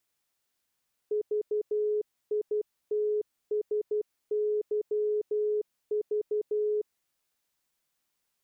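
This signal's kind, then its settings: Morse "VITSYV" 12 wpm 422 Hz -25 dBFS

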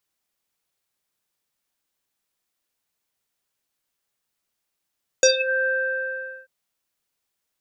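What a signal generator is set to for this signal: synth note square C5 24 dB/octave, low-pass 1.7 kHz, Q 12, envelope 2 oct, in 0.26 s, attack 2.1 ms, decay 0.11 s, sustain -13.5 dB, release 0.81 s, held 0.43 s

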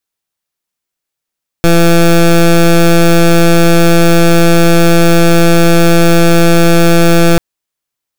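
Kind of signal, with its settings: pulse 169 Hz, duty 17% -5.5 dBFS 5.74 s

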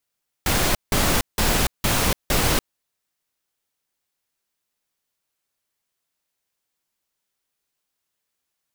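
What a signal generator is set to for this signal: noise bursts pink, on 0.29 s, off 0.17 s, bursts 5, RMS -19.5 dBFS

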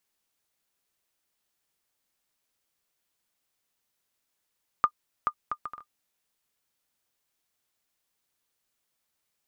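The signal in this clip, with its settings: bouncing ball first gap 0.43 s, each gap 0.57, 1.21 kHz, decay 69 ms -10 dBFS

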